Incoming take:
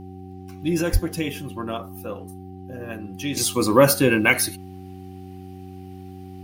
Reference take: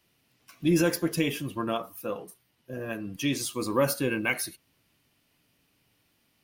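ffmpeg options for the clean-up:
-filter_complex "[0:a]bandreject=f=93:t=h:w=4,bandreject=f=186:t=h:w=4,bandreject=f=279:t=h:w=4,bandreject=f=372:t=h:w=4,bandreject=f=770:w=30,asplit=3[a][b][c];[a]afade=t=out:st=0.92:d=0.02[d];[b]highpass=f=140:w=0.5412,highpass=f=140:w=1.3066,afade=t=in:st=0.92:d=0.02,afade=t=out:st=1.04:d=0.02[e];[c]afade=t=in:st=1.04:d=0.02[f];[d][e][f]amix=inputs=3:normalize=0,asetnsamples=n=441:p=0,asendcmd='3.37 volume volume -10dB',volume=0dB"

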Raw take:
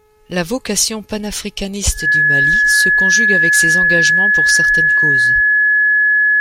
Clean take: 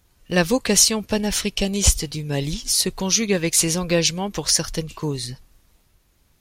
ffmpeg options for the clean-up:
-filter_complex "[0:a]bandreject=f=426.6:t=h:w=4,bandreject=f=853.2:t=h:w=4,bandreject=f=1.2798k:t=h:w=4,bandreject=f=1.7064k:t=h:w=4,bandreject=f=2.133k:t=h:w=4,bandreject=f=2.5596k:t=h:w=4,bandreject=f=1.7k:w=30,asplit=3[a][b][c];[a]afade=t=out:st=5.34:d=0.02[d];[b]highpass=f=140:w=0.5412,highpass=f=140:w=1.3066,afade=t=in:st=5.34:d=0.02,afade=t=out:st=5.46:d=0.02[e];[c]afade=t=in:st=5.46:d=0.02[f];[d][e][f]amix=inputs=3:normalize=0"

